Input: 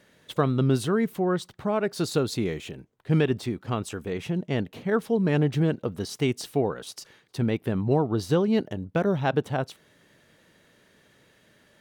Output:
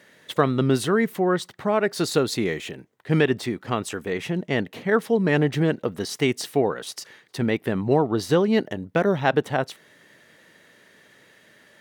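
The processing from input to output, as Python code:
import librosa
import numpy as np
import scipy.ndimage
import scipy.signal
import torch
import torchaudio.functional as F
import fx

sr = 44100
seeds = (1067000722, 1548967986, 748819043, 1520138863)

y = fx.highpass(x, sr, hz=230.0, slope=6)
y = fx.peak_eq(y, sr, hz=1900.0, db=6.0, octaves=0.32)
y = y * librosa.db_to_amplitude(5.0)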